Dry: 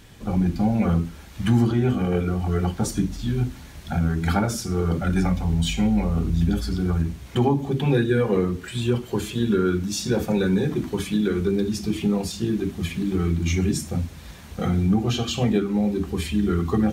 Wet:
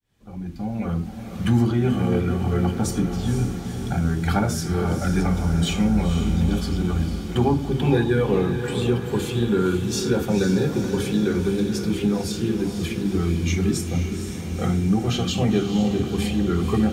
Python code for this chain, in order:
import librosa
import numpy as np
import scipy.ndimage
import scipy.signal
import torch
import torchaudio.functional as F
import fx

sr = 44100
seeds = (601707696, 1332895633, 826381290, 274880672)

y = fx.fade_in_head(x, sr, length_s=1.56)
y = fx.echo_diffused(y, sr, ms=487, feedback_pct=62, wet_db=-7.5)